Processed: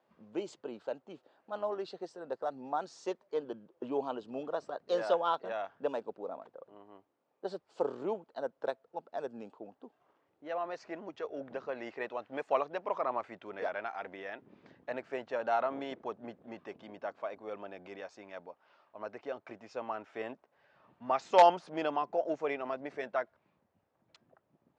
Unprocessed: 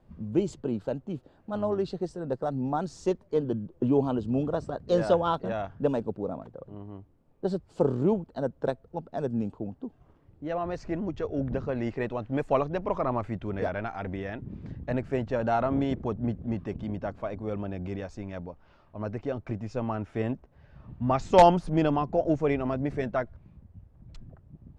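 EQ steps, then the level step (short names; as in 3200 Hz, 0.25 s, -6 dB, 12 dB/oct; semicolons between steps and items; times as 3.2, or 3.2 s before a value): BPF 560–6000 Hz; -2.5 dB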